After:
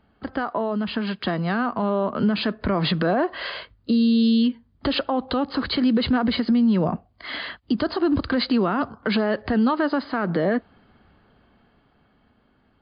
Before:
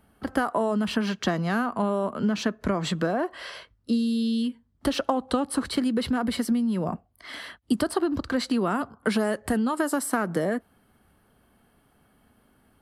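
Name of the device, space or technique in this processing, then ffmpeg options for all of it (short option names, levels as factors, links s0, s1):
low-bitrate web radio: -af "dynaudnorm=f=310:g=13:m=4.73,alimiter=limit=0.237:level=0:latency=1:release=59" -ar 11025 -c:a libmp3lame -b:a 48k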